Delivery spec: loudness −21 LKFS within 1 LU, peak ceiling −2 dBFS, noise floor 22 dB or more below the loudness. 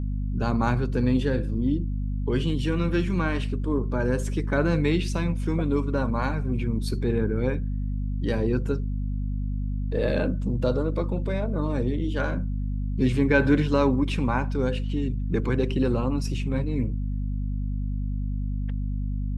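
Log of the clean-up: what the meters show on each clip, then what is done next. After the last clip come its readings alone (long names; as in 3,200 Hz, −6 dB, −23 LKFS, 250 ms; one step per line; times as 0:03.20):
mains hum 50 Hz; hum harmonics up to 250 Hz; level of the hum −25 dBFS; integrated loudness −26.5 LKFS; sample peak −6.0 dBFS; target loudness −21.0 LKFS
→ mains-hum notches 50/100/150/200/250 Hz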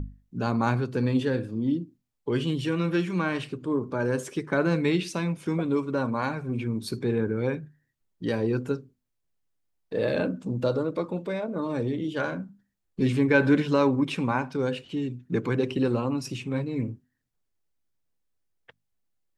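mains hum none found; integrated loudness −27.5 LKFS; sample peak −7.0 dBFS; target loudness −21.0 LKFS
→ level +6.5 dB
brickwall limiter −2 dBFS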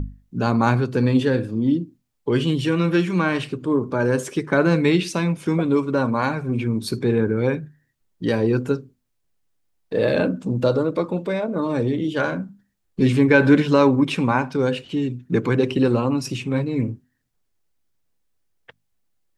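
integrated loudness −21.0 LKFS; sample peak −2.0 dBFS; background noise floor −72 dBFS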